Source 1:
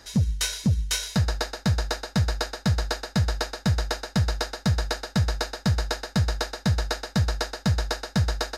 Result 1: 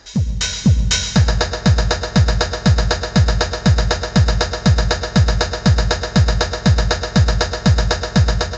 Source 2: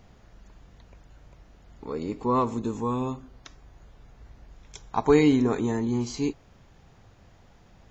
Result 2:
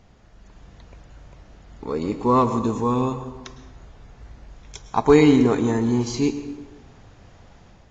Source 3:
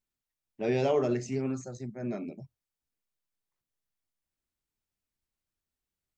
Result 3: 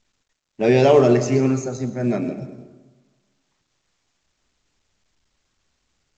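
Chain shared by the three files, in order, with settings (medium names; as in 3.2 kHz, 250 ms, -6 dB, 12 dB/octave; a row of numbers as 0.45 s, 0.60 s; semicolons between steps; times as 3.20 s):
level rider gain up to 6 dB; plate-style reverb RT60 1.2 s, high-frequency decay 0.6×, pre-delay 95 ms, DRR 10.5 dB; µ-law 128 kbps 16 kHz; peak normalisation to -3 dBFS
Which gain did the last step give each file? +3.5 dB, 0.0 dB, +7.0 dB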